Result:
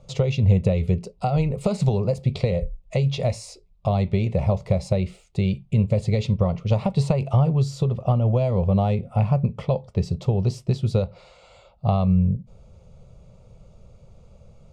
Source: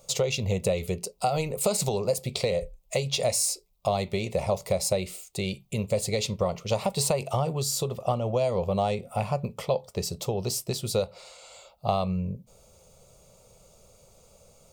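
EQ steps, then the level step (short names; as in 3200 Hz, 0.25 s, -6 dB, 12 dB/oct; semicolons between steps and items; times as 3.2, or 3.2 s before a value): air absorption 82 m; tone controls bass +13 dB, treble -8 dB; 0.0 dB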